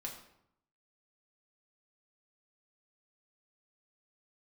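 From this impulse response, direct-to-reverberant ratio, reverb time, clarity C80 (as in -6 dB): -2.5 dB, 0.75 s, 9.5 dB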